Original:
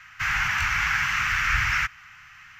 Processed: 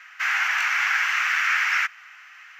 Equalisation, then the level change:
Chebyshev high-pass with heavy ripple 500 Hz, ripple 3 dB
+2.5 dB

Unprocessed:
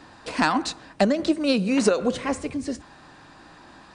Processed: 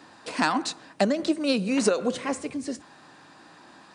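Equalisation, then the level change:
high-pass filter 150 Hz 12 dB per octave
high-shelf EQ 8,000 Hz +6 dB
−2.5 dB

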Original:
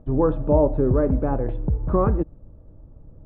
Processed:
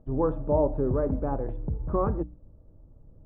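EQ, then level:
low-pass filter 1,500 Hz 6 dB per octave
mains-hum notches 60/120/180/240/300 Hz
dynamic equaliser 950 Hz, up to +4 dB, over −33 dBFS, Q 0.96
−6.5 dB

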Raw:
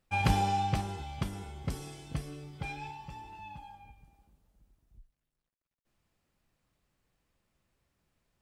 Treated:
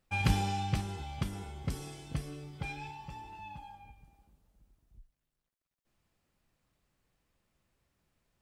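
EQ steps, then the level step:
dynamic equaliser 720 Hz, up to −7 dB, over −44 dBFS, Q 0.9
0.0 dB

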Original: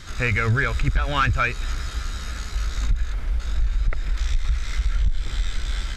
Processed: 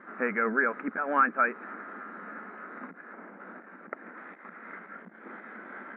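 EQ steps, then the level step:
linear-phase brick-wall high-pass 190 Hz
Butterworth low-pass 1,800 Hz 36 dB per octave
high-frequency loss of the air 160 metres
0.0 dB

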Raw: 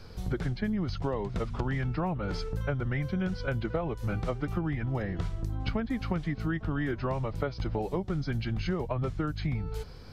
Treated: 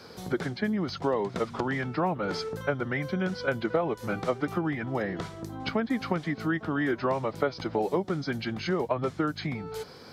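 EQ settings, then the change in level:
high-pass filter 240 Hz 12 dB per octave
parametric band 2,700 Hz −4 dB 0.32 octaves
+6.0 dB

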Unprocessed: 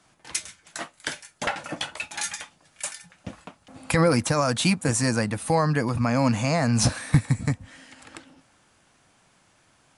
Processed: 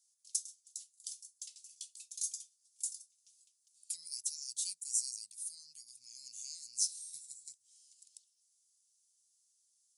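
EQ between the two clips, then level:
inverse Chebyshev high-pass filter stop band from 1,700 Hz, stop band 60 dB
−5.0 dB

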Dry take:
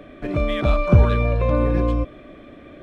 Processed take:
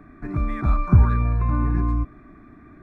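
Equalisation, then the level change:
high-shelf EQ 3,200 Hz −10 dB
phaser with its sweep stopped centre 1,300 Hz, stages 4
0.0 dB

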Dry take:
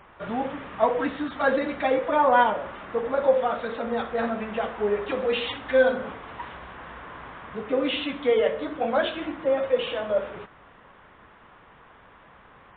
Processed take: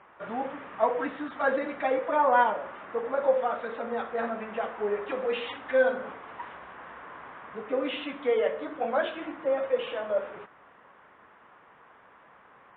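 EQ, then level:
high-pass filter 360 Hz 6 dB per octave
low-pass filter 2,400 Hz 12 dB per octave
−2.0 dB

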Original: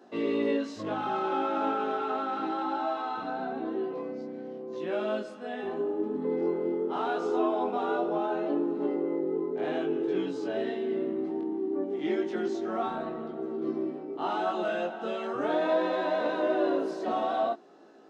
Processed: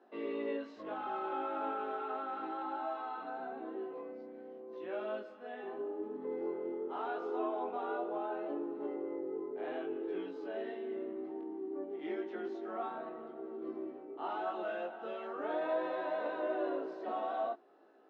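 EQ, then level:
band-pass filter 330–2,700 Hz
−7.5 dB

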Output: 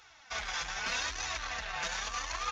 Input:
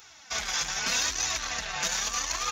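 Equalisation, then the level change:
head-to-tape spacing loss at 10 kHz 22 dB
parametric band 210 Hz −9.5 dB 2.7 octaves
+1.5 dB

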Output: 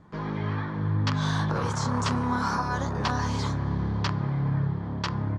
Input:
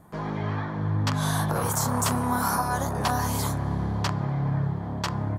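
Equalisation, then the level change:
low-pass filter 5,600 Hz 24 dB per octave
parametric band 700 Hz −8 dB 0.48 octaves
0.0 dB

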